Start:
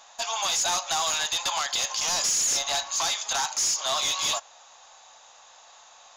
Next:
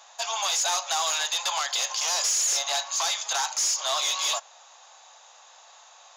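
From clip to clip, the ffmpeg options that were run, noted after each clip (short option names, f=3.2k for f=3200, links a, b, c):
-af "highpass=f=440:w=0.5412,highpass=f=440:w=1.3066"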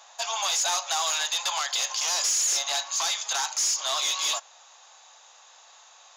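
-af "asubboost=boost=7:cutoff=220"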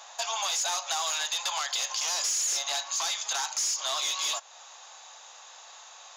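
-af "acompressor=threshold=-37dB:ratio=2,volume=4dB"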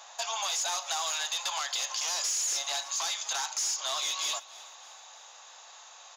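-af "aecho=1:1:307|614|921|1228:0.112|0.055|0.0269|0.0132,volume=-2dB"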